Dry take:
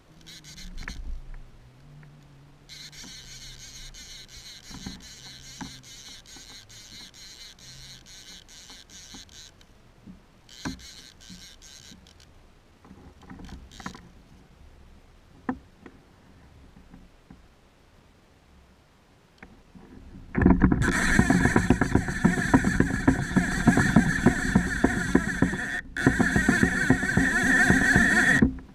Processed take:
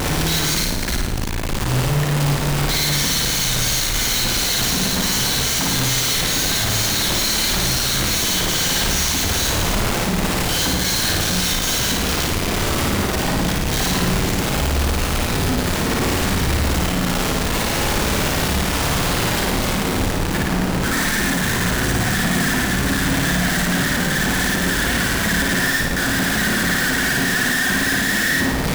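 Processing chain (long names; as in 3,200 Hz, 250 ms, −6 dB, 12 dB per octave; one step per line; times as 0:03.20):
sign of each sample alone
flutter between parallel walls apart 9.5 metres, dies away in 0.95 s
level +6 dB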